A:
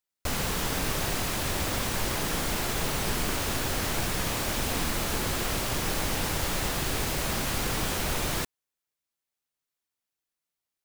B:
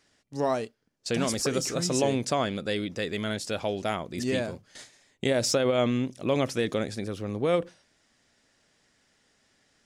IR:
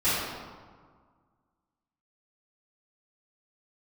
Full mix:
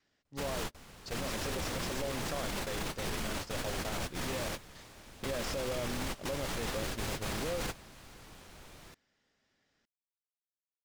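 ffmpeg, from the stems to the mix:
-filter_complex "[0:a]acrusher=bits=4:mix=0:aa=0.5,volume=-3dB,asplit=2[link_01][link_02];[link_02]volume=-20.5dB[link_03];[1:a]lowpass=6300,adynamicequalizer=threshold=0.00794:dfrequency=550:dqfactor=6.4:tfrequency=550:tqfactor=6.4:attack=5:release=100:ratio=0.375:range=3.5:mode=boostabove:tftype=bell,volume=-9dB,asplit=2[link_04][link_05];[link_05]apad=whole_len=478254[link_06];[link_01][link_06]sidechaingate=range=-52dB:threshold=-42dB:ratio=16:detection=peak[link_07];[link_03]aecho=0:1:495:1[link_08];[link_07][link_04][link_08]amix=inputs=3:normalize=0,highshelf=frequency=11000:gain=-11.5,alimiter=level_in=3dB:limit=-24dB:level=0:latency=1:release=33,volume=-3dB"

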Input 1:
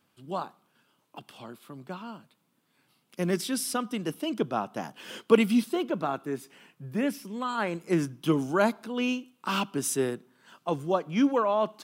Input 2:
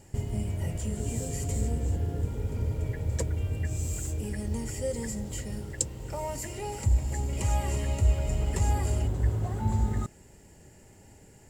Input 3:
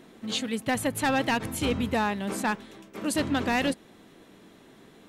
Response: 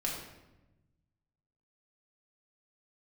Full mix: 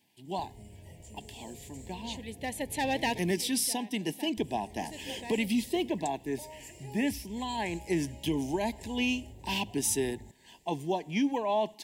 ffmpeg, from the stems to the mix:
-filter_complex "[0:a]equalizer=frequency=530:width_type=o:width=0.31:gain=-13,alimiter=limit=-20dB:level=0:latency=1:release=134,volume=3dB,asplit=2[link_01][link_02];[1:a]acompressor=threshold=-33dB:ratio=2,adelay=250,volume=-10dB,asplit=3[link_03][link_04][link_05];[link_03]atrim=end=3.32,asetpts=PTS-STARTPTS,afade=type=out:start_time=3.316:duration=0.004:curve=hsin[link_06];[link_04]atrim=start=3.32:end=4.37,asetpts=PTS-STARTPTS,volume=0[link_07];[link_05]atrim=start=4.37,asetpts=PTS-STARTPTS,afade=type=in:duration=0.004:curve=hsin[link_08];[link_06][link_07][link_08]concat=n=3:v=0:a=1[link_09];[2:a]adelay=1750,volume=-0.5dB[link_10];[link_02]apad=whole_len=301410[link_11];[link_10][link_11]sidechaincompress=threshold=-42dB:ratio=8:attack=9.7:release=1380[link_12];[link_01][link_09][link_12]amix=inputs=3:normalize=0,asuperstop=centerf=1300:order=8:qfactor=1.7,lowshelf=frequency=270:gain=-7"

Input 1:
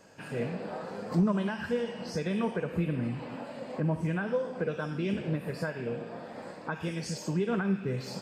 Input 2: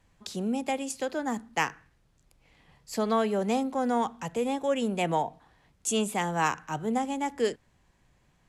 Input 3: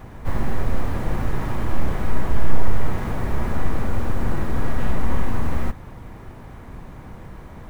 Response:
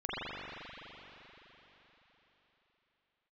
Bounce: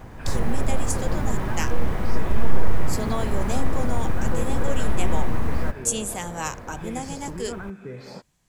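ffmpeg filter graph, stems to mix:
-filter_complex "[0:a]acompressor=threshold=-32dB:ratio=6,bass=frequency=250:gain=-5,treble=frequency=4000:gain=-9,bandreject=frequency=2800:width=7.1,volume=2dB[link_01];[1:a]bass=frequency=250:gain=2,treble=frequency=4000:gain=13,volume=-5dB[link_02];[2:a]volume=-1.5dB[link_03];[link_01][link_02][link_03]amix=inputs=3:normalize=0"

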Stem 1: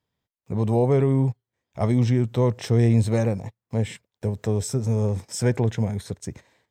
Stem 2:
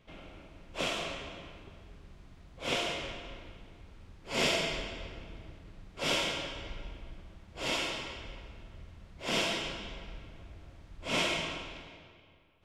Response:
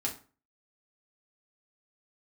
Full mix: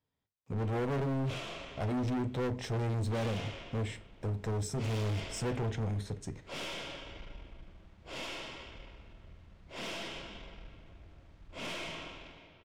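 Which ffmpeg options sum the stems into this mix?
-filter_complex "[0:a]volume=-8.5dB,asplit=2[link_01][link_02];[link_02]volume=-8.5dB[link_03];[1:a]aeval=exprs='(tanh(44.7*val(0)+0.4)-tanh(0.4))/44.7':channel_layout=same,adelay=500,volume=-3dB[link_04];[2:a]atrim=start_sample=2205[link_05];[link_03][link_05]afir=irnorm=-1:irlink=0[link_06];[link_01][link_04][link_06]amix=inputs=3:normalize=0,highshelf=frequency=8100:gain=-10,volume=30.5dB,asoftclip=hard,volume=-30.5dB"

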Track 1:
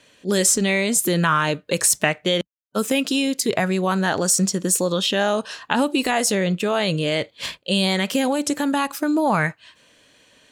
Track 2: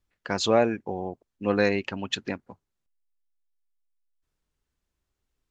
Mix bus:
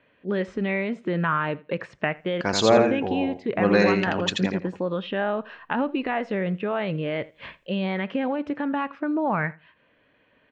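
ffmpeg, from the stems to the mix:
ffmpeg -i stem1.wav -i stem2.wav -filter_complex "[0:a]lowpass=frequency=2400:width=0.5412,lowpass=frequency=2400:width=1.3066,volume=-5dB,asplit=2[link_01][link_02];[link_02]volume=-22.5dB[link_03];[1:a]adelay=2150,volume=2.5dB,asplit=2[link_04][link_05];[link_05]volume=-4dB[link_06];[link_03][link_06]amix=inputs=2:normalize=0,aecho=0:1:83|166|249:1|0.19|0.0361[link_07];[link_01][link_04][link_07]amix=inputs=3:normalize=0,equalizer=frequency=11000:width=7.8:gain=-14.5" out.wav

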